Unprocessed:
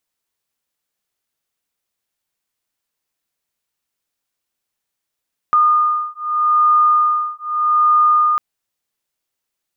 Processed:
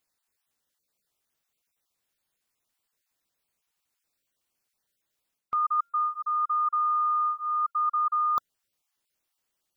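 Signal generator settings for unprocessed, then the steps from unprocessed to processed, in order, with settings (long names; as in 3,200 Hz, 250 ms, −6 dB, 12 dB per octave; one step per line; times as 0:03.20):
two tones that beat 1,220 Hz, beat 0.81 Hz, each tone −15 dBFS 2.85 s
time-frequency cells dropped at random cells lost 20%
reversed playback
downward compressor 10 to 1, threshold −24 dBFS
reversed playback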